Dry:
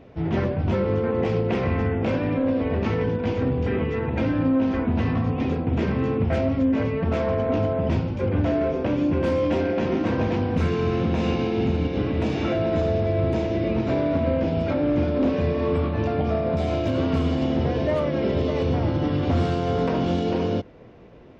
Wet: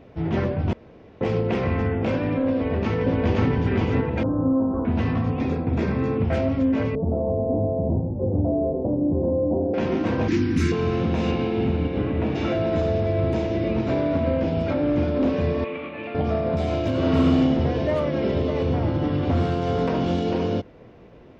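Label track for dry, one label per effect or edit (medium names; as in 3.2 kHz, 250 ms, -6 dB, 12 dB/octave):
0.730000	1.210000	room tone
2.540000	3.490000	echo throw 520 ms, feedback 20%, level 0 dB
4.230000	4.850000	elliptic low-pass 1.2 kHz, stop band 50 dB
5.390000	6.160000	band-stop 3 kHz, Q 6.4
6.950000	9.740000	steep low-pass 790 Hz
10.280000	10.720000	FFT filter 200 Hz 0 dB, 340 Hz +9 dB, 560 Hz -25 dB, 1.2 kHz -3 dB, 1.9 kHz +6 dB, 3.1 kHz +1 dB, 6 kHz +12 dB
11.310000	12.340000	low-pass 4.7 kHz -> 2.4 kHz
15.640000	16.150000	cabinet simulation 380–3200 Hz, peaks and dips at 400 Hz -10 dB, 720 Hz -8 dB, 1 kHz -7 dB, 1.5 kHz -6 dB, 2.4 kHz +8 dB
16.970000	17.370000	reverb throw, RT60 1 s, DRR -1 dB
18.380000	19.620000	treble shelf 4.5 kHz -6.5 dB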